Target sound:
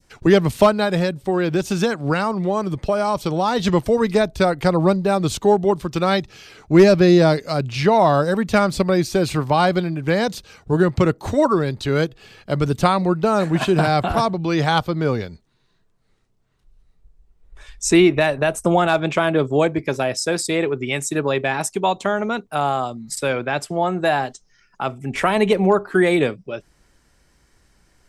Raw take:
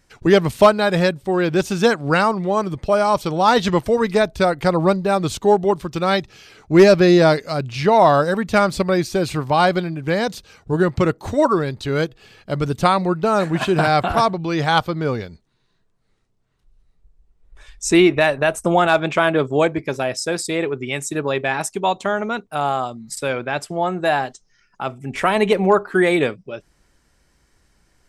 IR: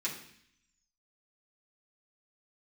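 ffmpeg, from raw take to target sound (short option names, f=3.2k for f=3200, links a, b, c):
-filter_complex "[0:a]acrossover=split=270[a][b];[b]acompressor=threshold=-20dB:ratio=1.5[c];[a][c]amix=inputs=2:normalize=0,adynamicequalizer=threshold=0.0316:dfrequency=1600:dqfactor=0.75:tfrequency=1600:tqfactor=0.75:attack=5:release=100:ratio=0.375:range=2:mode=cutabove:tftype=bell,asettb=1/sr,asplit=3[d][e][f];[d]atrim=end=0.834[g];[e]atrim=start=0.83:end=3.6,asetpts=PTS-STARTPTS,afade=t=in:d=0.004:c=qsin,afade=t=out:st=2.766:d=0.004:c=qsin,acompressor=threshold=-17dB:ratio=6[h];[f]atrim=start=3.596[i];[g][h]acrossfade=d=0.004:c1=hsin:c2=qsin[j];[j][i]acrossfade=d=0.004:c1=qsin:c2=hsin,volume=2dB"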